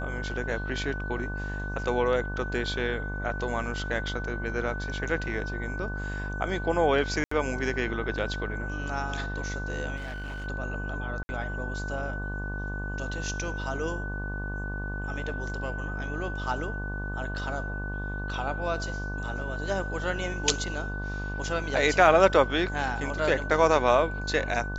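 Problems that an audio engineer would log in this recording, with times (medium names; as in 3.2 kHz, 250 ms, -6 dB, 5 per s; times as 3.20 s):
buzz 50 Hz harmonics 24 -34 dBFS
whine 1.5 kHz -36 dBFS
7.24–7.31 s: dropout 74 ms
9.96–10.47 s: clipped -33 dBFS
11.23–11.29 s: dropout 60 ms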